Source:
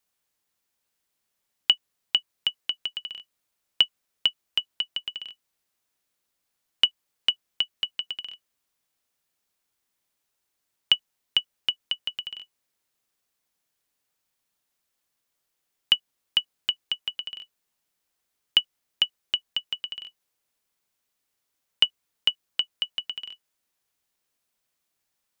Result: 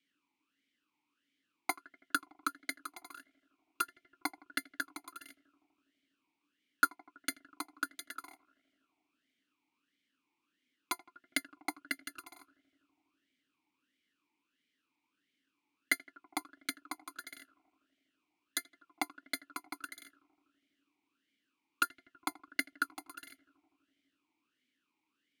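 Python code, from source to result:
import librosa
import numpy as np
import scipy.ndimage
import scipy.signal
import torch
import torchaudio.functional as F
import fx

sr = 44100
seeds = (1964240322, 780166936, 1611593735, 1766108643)

y = fx.bit_reversed(x, sr, seeds[0], block=256)
y = fx.echo_filtered(y, sr, ms=82, feedback_pct=85, hz=1900.0, wet_db=-20.0)
y = fx.vowel_sweep(y, sr, vowels='i-u', hz=1.5)
y = y * librosa.db_to_amplitude(16.0)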